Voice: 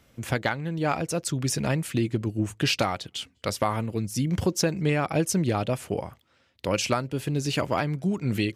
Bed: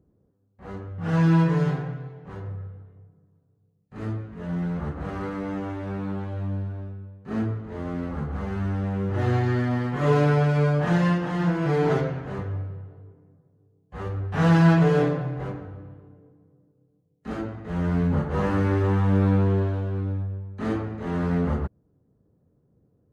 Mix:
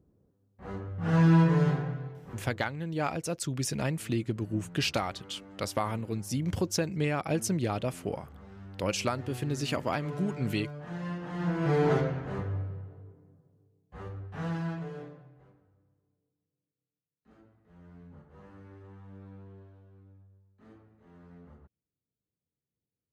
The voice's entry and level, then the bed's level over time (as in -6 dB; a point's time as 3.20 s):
2.15 s, -5.0 dB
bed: 2.11 s -2 dB
2.90 s -19.5 dB
10.82 s -19.5 dB
11.69 s -3 dB
13.53 s -3 dB
15.51 s -28.5 dB